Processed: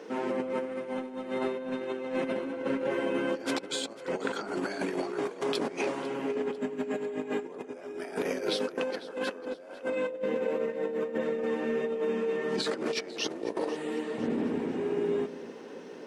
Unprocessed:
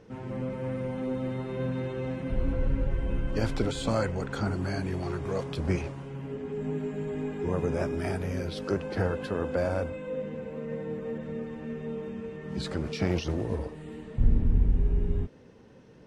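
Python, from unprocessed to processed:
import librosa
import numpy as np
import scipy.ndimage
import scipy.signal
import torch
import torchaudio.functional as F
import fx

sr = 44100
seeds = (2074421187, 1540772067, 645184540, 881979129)

p1 = scipy.signal.sosfilt(scipy.signal.butter(4, 280.0, 'highpass', fs=sr, output='sos'), x)
p2 = fx.over_compress(p1, sr, threshold_db=-39.0, ratio=-0.5)
p3 = p2 + fx.echo_alternate(p2, sr, ms=249, hz=820.0, feedback_pct=66, wet_db=-14, dry=0)
y = F.gain(torch.from_numpy(p3), 7.0).numpy()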